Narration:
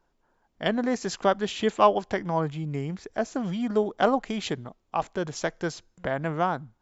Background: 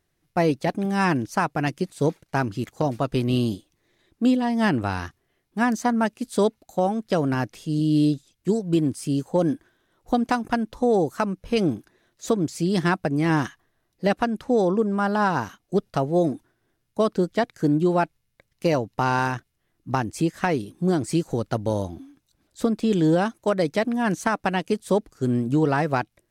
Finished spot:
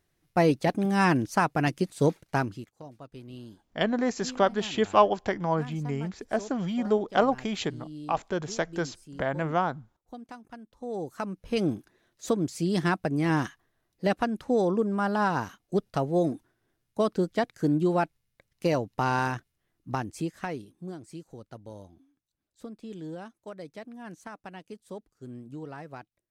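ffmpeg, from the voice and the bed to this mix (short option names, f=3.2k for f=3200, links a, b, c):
-filter_complex "[0:a]adelay=3150,volume=-0.5dB[a];[1:a]volume=16.5dB,afade=t=out:st=2.3:d=0.38:silence=0.0944061,afade=t=in:st=10.74:d=0.97:silence=0.133352,afade=t=out:st=19.5:d=1.48:silence=0.16788[b];[a][b]amix=inputs=2:normalize=0"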